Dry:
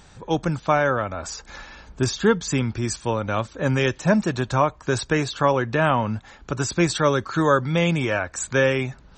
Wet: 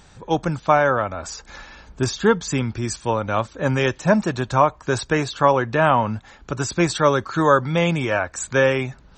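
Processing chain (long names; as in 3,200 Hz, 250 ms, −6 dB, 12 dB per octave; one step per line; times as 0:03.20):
dynamic equaliser 870 Hz, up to +5 dB, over −29 dBFS, Q 0.93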